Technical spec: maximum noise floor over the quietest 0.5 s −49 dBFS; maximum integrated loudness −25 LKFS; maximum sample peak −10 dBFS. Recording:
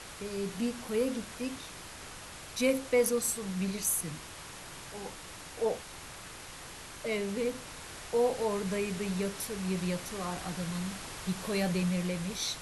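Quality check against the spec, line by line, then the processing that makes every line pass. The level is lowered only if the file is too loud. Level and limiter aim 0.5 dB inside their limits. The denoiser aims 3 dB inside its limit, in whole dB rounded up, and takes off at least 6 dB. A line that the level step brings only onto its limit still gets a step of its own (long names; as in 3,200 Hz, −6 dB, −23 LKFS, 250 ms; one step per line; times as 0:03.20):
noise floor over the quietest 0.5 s −46 dBFS: out of spec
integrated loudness −33.0 LKFS: in spec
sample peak −15.5 dBFS: in spec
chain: broadband denoise 6 dB, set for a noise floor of −46 dBFS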